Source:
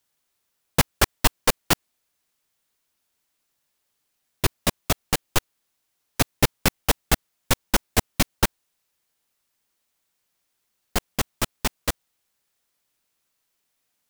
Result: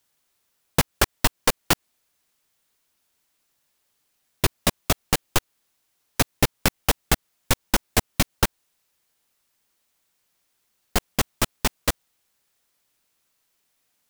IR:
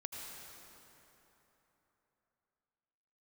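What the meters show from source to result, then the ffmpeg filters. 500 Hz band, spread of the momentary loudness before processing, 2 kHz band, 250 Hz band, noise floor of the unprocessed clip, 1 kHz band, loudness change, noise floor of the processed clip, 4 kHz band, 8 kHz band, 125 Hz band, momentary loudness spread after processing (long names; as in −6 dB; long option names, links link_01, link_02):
0.0 dB, 7 LU, +0.5 dB, 0.0 dB, −76 dBFS, 0.0 dB, 0.0 dB, −75 dBFS, +0.5 dB, +0.5 dB, 0.0 dB, 5 LU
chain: -af "acompressor=threshold=-19dB:ratio=4,volume=3.5dB"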